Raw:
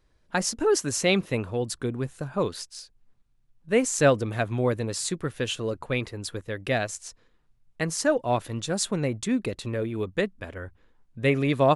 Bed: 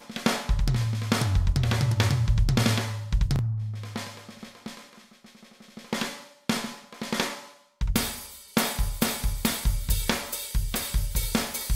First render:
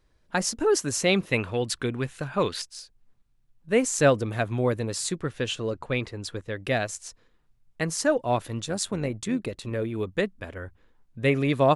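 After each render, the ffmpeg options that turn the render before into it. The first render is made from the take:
-filter_complex "[0:a]asettb=1/sr,asplit=3[a][b][c];[a]atrim=end=1.324[d];[b]atrim=start=1.32:end=2.62,asetpts=PTS-STARTPTS,afade=t=in:d=0.004:c=qsin,afade=t=out:st=1.296:d=0.004:c=qsin,equalizer=f=2.5k:t=o:w=2:g=9.5[e];[c]atrim=start=2.616[f];[d][e]acrossfade=d=0.004:c1=hsin:c2=qsin[g];[g][f]acrossfade=d=0.004:c1=qsin:c2=hsin,asettb=1/sr,asplit=3[h][i][j];[h]atrim=end=5.174[k];[i]atrim=start=5.17:end=6.62,asetpts=PTS-STARTPTS,afade=t=in:d=0.004:c=qsin,afade=t=out:st=1.446:d=0.004:c=qsin,lowpass=8k[l];[j]atrim=start=6.616[m];[k][l]acrossfade=d=0.004:c1=hsin:c2=qsin[n];[n][m]acrossfade=d=0.004:c1=qsin:c2=hsin,asplit=3[o][p][q];[o]afade=t=out:st=8.63:d=0.02[r];[p]tremolo=f=93:d=0.462,afade=t=in:st=8.63:d=0.02,afade=t=out:st=9.7:d=0.02[s];[q]afade=t=in:st=9.7:d=0.02[t];[r][s][t]amix=inputs=3:normalize=0"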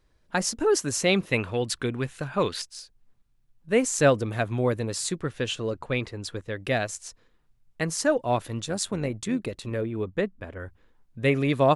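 -filter_complex "[0:a]asettb=1/sr,asplit=3[a][b][c];[a]atrim=end=9.814[d];[b]atrim=start=9.81:end=10.6,asetpts=PTS-STARTPTS,afade=t=in:d=0.004:c=qsin,afade=t=out:st=0.786:d=0.004:c=qsin,highshelf=f=2.9k:g=-10.5[e];[c]atrim=start=10.596[f];[d][e]acrossfade=d=0.004:c1=hsin:c2=qsin[g];[g][f]acrossfade=d=0.004:c1=qsin:c2=hsin"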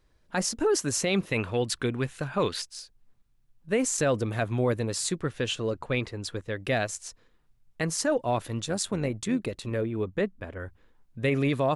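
-af "alimiter=limit=-16.5dB:level=0:latency=1:release=16"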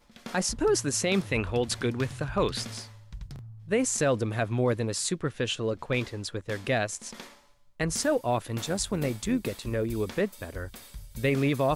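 -filter_complex "[1:a]volume=-17dB[a];[0:a][a]amix=inputs=2:normalize=0"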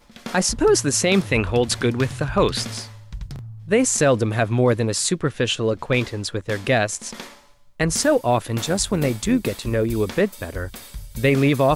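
-af "volume=8dB"

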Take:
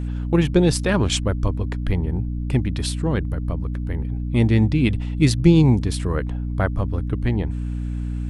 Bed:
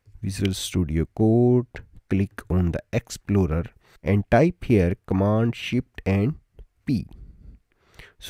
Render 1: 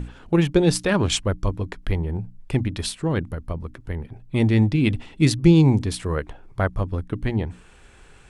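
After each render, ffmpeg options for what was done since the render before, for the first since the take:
-af "bandreject=f=60:t=h:w=6,bandreject=f=120:t=h:w=6,bandreject=f=180:t=h:w=6,bandreject=f=240:t=h:w=6,bandreject=f=300:t=h:w=6"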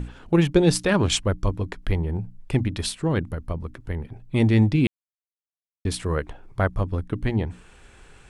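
-filter_complex "[0:a]asplit=3[a][b][c];[a]atrim=end=4.87,asetpts=PTS-STARTPTS,afade=t=out:st=4.866:d=0.004:c=hsin[d];[b]atrim=start=4.87:end=5.85,asetpts=PTS-STARTPTS,volume=0[e];[c]atrim=start=5.85,asetpts=PTS-STARTPTS,afade=t=in:d=0.004:c=hsin[f];[d][e][f]concat=n=3:v=0:a=1"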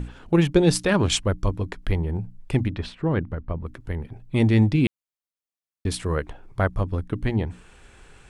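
-filter_complex "[0:a]asettb=1/sr,asplit=3[a][b][c];[a]atrim=end=2.704[d];[b]atrim=start=2.7:end=3.66,asetpts=PTS-STARTPTS,afade=t=in:d=0.004:c=qsin,afade=t=out:st=0.956:d=0.004:c=qsin,lowpass=2.4k[e];[c]atrim=start=3.656[f];[d][e]acrossfade=d=0.004:c1=hsin:c2=qsin[g];[g][f]acrossfade=d=0.004:c1=qsin:c2=hsin"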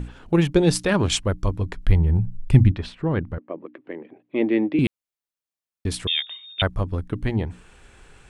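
-filter_complex "[0:a]asettb=1/sr,asplit=3[a][b][c];[a]atrim=end=1.444[d];[b]atrim=start=1.44:end=2.72,asetpts=PTS-STARTPTS,afade=t=in:d=0.004:c=qsin,afade=t=out:st=1.276:d=0.004:c=qsin,asubboost=boost=10:cutoff=210[e];[c]atrim=start=2.716[f];[d][e]acrossfade=d=0.004:c1=hsin:c2=qsin[g];[g][f]acrossfade=d=0.004:c1=qsin:c2=hsin,asettb=1/sr,asplit=3[h][i][j];[h]atrim=end=3.384[k];[i]atrim=start=3.38:end=4.79,asetpts=PTS-STARTPTS,afade=t=in:d=0.004:c=qsin,afade=t=out:st=1.406:d=0.004:c=qsin,highpass=f=260:w=0.5412,highpass=f=260:w=1.3066,equalizer=f=320:t=q:w=4:g=7,equalizer=f=570:t=q:w=4:g=4,equalizer=f=890:t=q:w=4:g=-5,equalizer=f=1.4k:t=q:w=4:g=-7,lowpass=f=2.8k:w=0.5412,lowpass=f=2.8k:w=1.3066[l];[j]atrim=start=4.786[m];[k][l]acrossfade=d=0.004:c1=hsin:c2=qsin[n];[n][m]acrossfade=d=0.004:c1=qsin:c2=hsin,asettb=1/sr,asplit=3[o][p][q];[o]atrim=end=6.074[r];[p]atrim=start=6.07:end=6.62,asetpts=PTS-STARTPTS,afade=t=in:d=0.004:c=qsin,afade=t=out:st=0.546:d=0.004:c=qsin,lowpass=f=3.1k:t=q:w=0.5098,lowpass=f=3.1k:t=q:w=0.6013,lowpass=f=3.1k:t=q:w=0.9,lowpass=f=3.1k:t=q:w=2.563,afreqshift=-3700[s];[q]atrim=start=6.616[t];[r][s]acrossfade=d=0.004:c1=hsin:c2=qsin[u];[u][t]acrossfade=d=0.004:c1=qsin:c2=hsin"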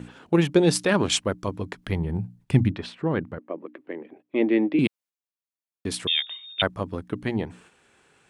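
-af "highpass=170,agate=range=-7dB:threshold=-51dB:ratio=16:detection=peak"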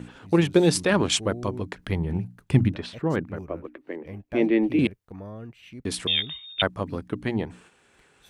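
-filter_complex "[1:a]volume=-18.5dB[a];[0:a][a]amix=inputs=2:normalize=0"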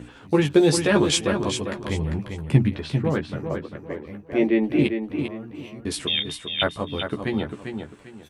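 -filter_complex "[0:a]asplit=2[a][b];[b]adelay=14,volume=-5dB[c];[a][c]amix=inputs=2:normalize=0,aecho=1:1:397|794|1191:0.447|0.125|0.035"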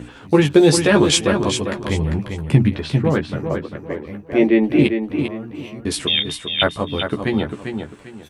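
-af "volume=5.5dB,alimiter=limit=-2dB:level=0:latency=1"

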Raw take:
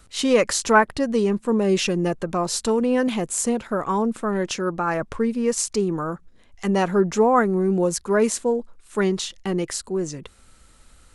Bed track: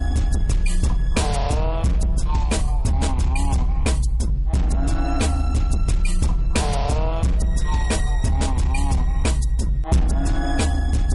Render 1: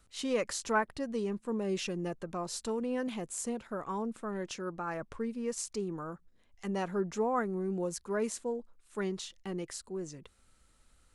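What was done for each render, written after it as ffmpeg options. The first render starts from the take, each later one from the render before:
-af "volume=-13.5dB"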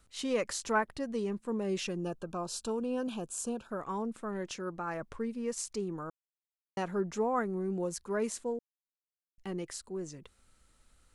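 -filter_complex "[0:a]asettb=1/sr,asplit=3[a][b][c];[a]atrim=end=1.964[d];[b]atrim=start=1.96:end=3.7,asetpts=PTS-STARTPTS,afade=t=in:d=0.004:c=qsin,afade=t=out:st=1.736:d=0.004:c=qsin,asuperstop=centerf=2000:order=8:qfactor=3[e];[c]atrim=start=3.696[f];[d][e]acrossfade=d=0.004:c1=hsin:c2=qsin[g];[g][f]acrossfade=d=0.004:c1=qsin:c2=hsin,asplit=5[h][i][j][k][l];[h]atrim=end=6.1,asetpts=PTS-STARTPTS,afade=t=out:st=6.096:d=0.004:c=hsin[m];[i]atrim=start=6.1:end=6.77,asetpts=PTS-STARTPTS,volume=0[n];[j]atrim=start=6.77:end=8.59,asetpts=PTS-STARTPTS,afade=t=in:d=0.004:c=hsin,afade=t=out:st=1.816:d=0.004:c=hsin[o];[k]atrim=start=8.59:end=9.38,asetpts=PTS-STARTPTS,volume=0[p];[l]atrim=start=9.38,asetpts=PTS-STARTPTS,afade=t=in:d=0.004:c=hsin[q];[m][n][o][p][q]concat=n=5:v=0:a=1"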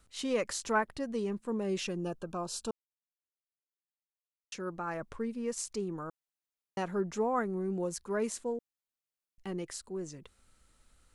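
-filter_complex "[0:a]asplit=3[a][b][c];[a]atrim=end=2.71,asetpts=PTS-STARTPTS,afade=t=out:st=2.706:d=0.004:c=hsin[d];[b]atrim=start=2.71:end=4.52,asetpts=PTS-STARTPTS,volume=0[e];[c]atrim=start=4.52,asetpts=PTS-STARTPTS,afade=t=in:d=0.004:c=hsin[f];[d][e][f]concat=n=3:v=0:a=1"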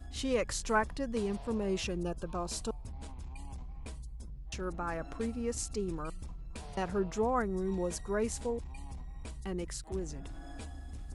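-filter_complex "[1:a]volume=-24.5dB[a];[0:a][a]amix=inputs=2:normalize=0"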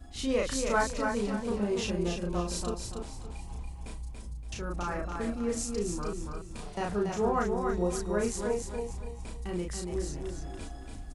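-filter_complex "[0:a]asplit=2[a][b];[b]adelay=34,volume=-2dB[c];[a][c]amix=inputs=2:normalize=0,asplit=2[d][e];[e]aecho=0:1:284|568|852|1136:0.562|0.186|0.0612|0.0202[f];[d][f]amix=inputs=2:normalize=0"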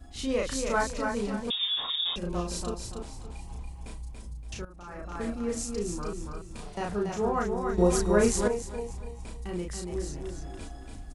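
-filter_complex "[0:a]asettb=1/sr,asplit=3[a][b][c];[a]atrim=end=1.504[d];[b]atrim=start=1.5:end=2.16,asetpts=PTS-STARTPTS,afade=t=in:d=0.004:c=qsin,afade=t=out:st=0.656:d=0.004:c=qsin,lowpass=f=3.2k:t=q:w=0.5098,lowpass=f=3.2k:t=q:w=0.6013,lowpass=f=3.2k:t=q:w=0.9,lowpass=f=3.2k:t=q:w=2.563,afreqshift=-3800[e];[c]atrim=start=2.156[f];[d][e]acrossfade=d=0.004:c1=hsin:c2=qsin[g];[g][f]acrossfade=d=0.004:c1=qsin:c2=hsin,asettb=1/sr,asplit=3[h][i][j];[h]atrim=end=7.784[k];[i]atrim=start=7.78:end=8.48,asetpts=PTS-STARTPTS,afade=t=in:d=0.004:c=qsin,afade=t=out:st=0.696:d=0.004:c=qsin,acontrast=89[l];[j]atrim=start=8.476[m];[k][l]acrossfade=d=0.004:c1=hsin:c2=qsin[n];[n][m]acrossfade=d=0.004:c1=qsin:c2=hsin,asplit=2[o][p];[o]atrim=end=4.65,asetpts=PTS-STARTPTS,afade=t=out:st=4.646:d=0.004:c=hsin:silence=0.177828[q];[p]atrim=start=4.65,asetpts=PTS-STARTPTS,afade=t=in:d=0.55:c=qua:silence=0.177828[r];[q][r]concat=n=2:v=0:a=1"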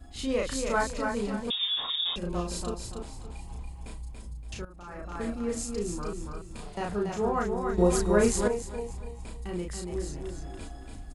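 -af "bandreject=f=5.8k:w=9.9"

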